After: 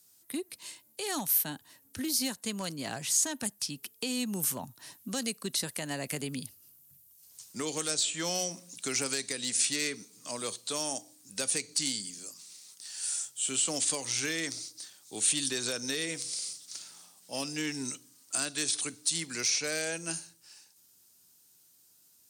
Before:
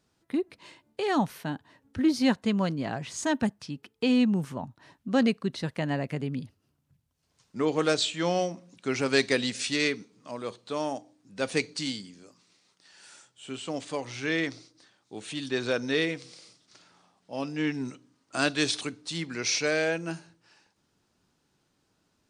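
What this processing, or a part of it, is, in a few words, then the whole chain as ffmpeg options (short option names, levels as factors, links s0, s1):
FM broadcast chain: -filter_complex "[0:a]highpass=60,dynaudnorm=f=250:g=31:m=2,acrossover=split=220|2300|5000[s0][s1][s2][s3];[s0]acompressor=threshold=0.0158:ratio=4[s4];[s1]acompressor=threshold=0.0562:ratio=4[s5];[s2]acompressor=threshold=0.00708:ratio=4[s6];[s3]acompressor=threshold=0.00708:ratio=4[s7];[s4][s5][s6][s7]amix=inputs=4:normalize=0,aemphasis=mode=production:type=75fm,alimiter=limit=0.112:level=0:latency=1:release=329,asoftclip=type=hard:threshold=0.0891,lowpass=f=15000:w=0.5412,lowpass=f=15000:w=1.3066,aemphasis=mode=production:type=75fm,volume=0.531"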